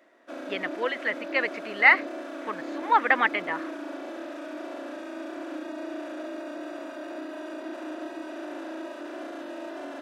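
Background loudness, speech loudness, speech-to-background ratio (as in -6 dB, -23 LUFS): -37.5 LUFS, -24.0 LUFS, 13.5 dB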